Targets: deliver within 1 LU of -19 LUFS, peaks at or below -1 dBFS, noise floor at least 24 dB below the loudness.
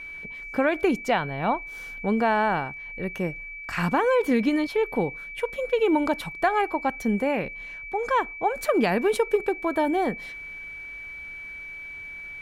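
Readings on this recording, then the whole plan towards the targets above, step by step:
steady tone 2.3 kHz; tone level -36 dBFS; loudness -25.5 LUFS; peak level -10.5 dBFS; loudness target -19.0 LUFS
-> band-stop 2.3 kHz, Q 30; trim +6.5 dB

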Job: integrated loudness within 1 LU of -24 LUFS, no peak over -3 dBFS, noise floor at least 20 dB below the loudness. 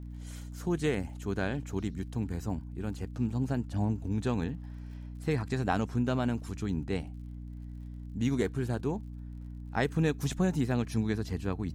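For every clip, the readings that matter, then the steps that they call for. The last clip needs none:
tick rate 40 per s; hum 60 Hz; highest harmonic 300 Hz; hum level -40 dBFS; loudness -32.5 LUFS; peak level -14.0 dBFS; loudness target -24.0 LUFS
-> de-click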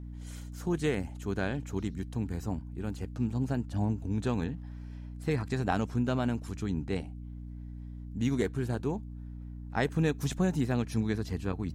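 tick rate 0 per s; hum 60 Hz; highest harmonic 300 Hz; hum level -40 dBFS
-> hum notches 60/120/180/240/300 Hz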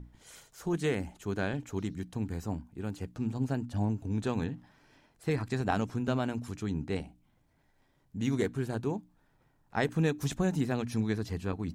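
hum not found; loudness -33.5 LUFS; peak level -14.5 dBFS; loudness target -24.0 LUFS
-> trim +9.5 dB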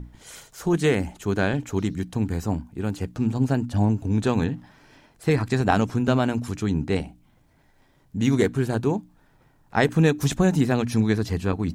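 loudness -24.0 LUFS; peak level -5.0 dBFS; noise floor -60 dBFS

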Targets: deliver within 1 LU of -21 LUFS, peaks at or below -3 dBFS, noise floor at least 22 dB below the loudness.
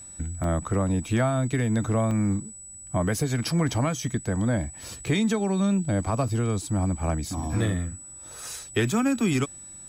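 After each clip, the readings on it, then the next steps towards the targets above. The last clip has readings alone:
dropouts 4; longest dropout 2.1 ms; steady tone 7.9 kHz; tone level -41 dBFS; loudness -26.5 LUFS; peak level -13.0 dBFS; loudness target -21.0 LUFS
-> interpolate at 0.44/2.11/4.01/6.28 s, 2.1 ms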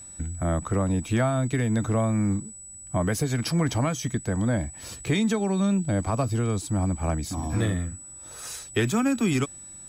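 dropouts 0; steady tone 7.9 kHz; tone level -41 dBFS
-> band-stop 7.9 kHz, Q 30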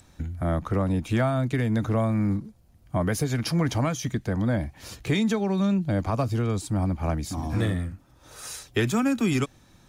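steady tone not found; loudness -26.0 LUFS; peak level -13.0 dBFS; loudness target -21.0 LUFS
-> trim +5 dB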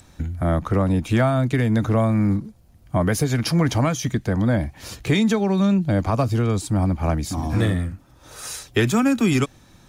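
loudness -21.0 LUFS; peak level -8.0 dBFS; noise floor -52 dBFS

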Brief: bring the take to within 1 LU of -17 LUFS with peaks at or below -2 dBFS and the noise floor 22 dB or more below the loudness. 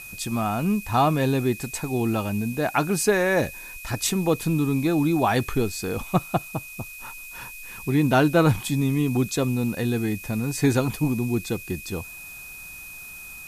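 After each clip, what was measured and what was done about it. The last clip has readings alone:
steady tone 2.5 kHz; tone level -39 dBFS; noise floor -40 dBFS; noise floor target -46 dBFS; loudness -24.0 LUFS; peak level -6.0 dBFS; loudness target -17.0 LUFS
-> band-stop 2.5 kHz, Q 30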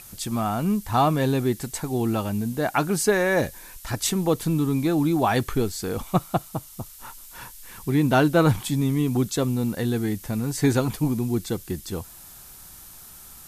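steady tone not found; noise floor -45 dBFS; noise floor target -46 dBFS
-> noise print and reduce 6 dB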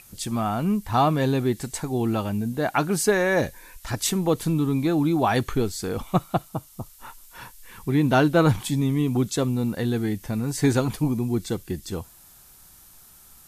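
noise floor -51 dBFS; loudness -24.0 LUFS; peak level -6.0 dBFS; loudness target -17.0 LUFS
-> trim +7 dB; peak limiter -2 dBFS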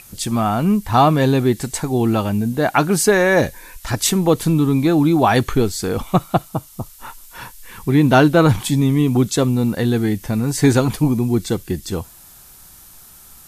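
loudness -17.0 LUFS; peak level -2.0 dBFS; noise floor -44 dBFS

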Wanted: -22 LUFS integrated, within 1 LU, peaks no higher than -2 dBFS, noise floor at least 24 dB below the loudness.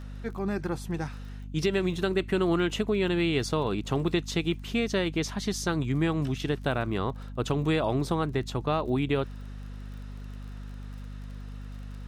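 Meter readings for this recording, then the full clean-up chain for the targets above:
tick rate 28 per s; hum 50 Hz; highest harmonic 250 Hz; hum level -37 dBFS; loudness -28.5 LUFS; peak level -14.0 dBFS; loudness target -22.0 LUFS
-> de-click; de-hum 50 Hz, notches 5; trim +6.5 dB

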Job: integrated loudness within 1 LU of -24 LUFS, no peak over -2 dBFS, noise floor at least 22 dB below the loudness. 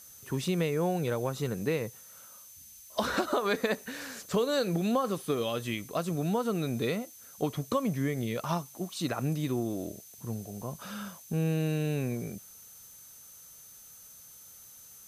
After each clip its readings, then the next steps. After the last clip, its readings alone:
steady tone 6.2 kHz; tone level -54 dBFS; noise floor -52 dBFS; noise floor target -54 dBFS; loudness -32.0 LUFS; peak level -15.0 dBFS; loudness target -24.0 LUFS
-> band-stop 6.2 kHz, Q 30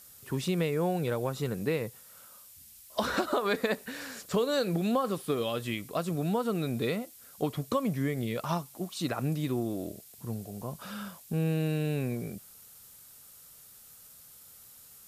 steady tone not found; noise floor -53 dBFS; noise floor target -54 dBFS
-> noise print and reduce 6 dB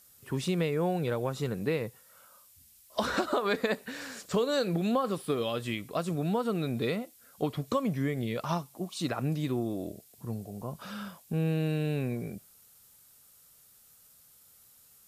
noise floor -59 dBFS; loudness -32.0 LUFS; peak level -15.0 dBFS; loudness target -24.0 LUFS
-> trim +8 dB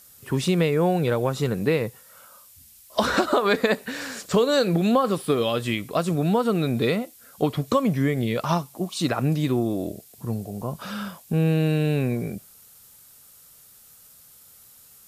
loudness -24.0 LUFS; peak level -7.0 dBFS; noise floor -51 dBFS

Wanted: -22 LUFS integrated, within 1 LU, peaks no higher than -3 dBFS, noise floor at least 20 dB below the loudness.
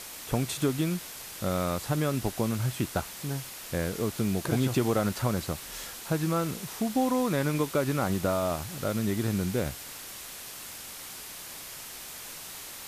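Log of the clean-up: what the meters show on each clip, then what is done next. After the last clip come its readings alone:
noise floor -43 dBFS; noise floor target -51 dBFS; loudness -30.5 LUFS; peak level -14.5 dBFS; loudness target -22.0 LUFS
-> noise print and reduce 8 dB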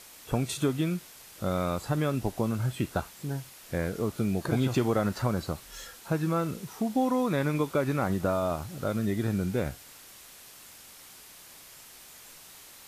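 noise floor -51 dBFS; loudness -30.0 LUFS; peak level -15.0 dBFS; loudness target -22.0 LUFS
-> trim +8 dB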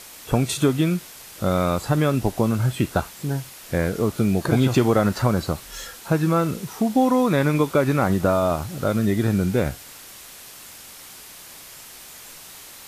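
loudness -22.0 LUFS; peak level -7.0 dBFS; noise floor -43 dBFS

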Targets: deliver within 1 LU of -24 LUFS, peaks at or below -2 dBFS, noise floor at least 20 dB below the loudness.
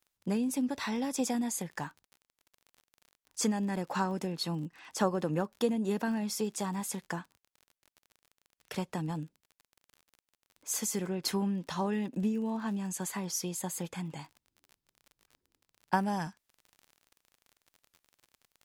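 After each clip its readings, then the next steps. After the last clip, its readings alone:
tick rate 39 per s; loudness -33.5 LUFS; peak level -12.0 dBFS; loudness target -24.0 LUFS
-> de-click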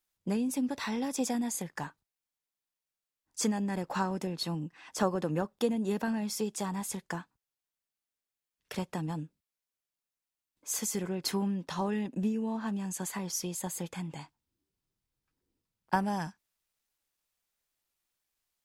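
tick rate 0.11 per s; loudness -33.5 LUFS; peak level -12.0 dBFS; loudness target -24.0 LUFS
-> trim +9.5 dB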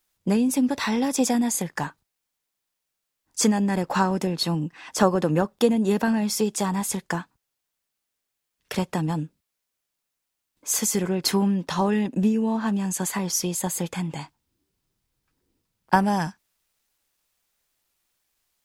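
loudness -24.0 LUFS; peak level -2.5 dBFS; noise floor -82 dBFS

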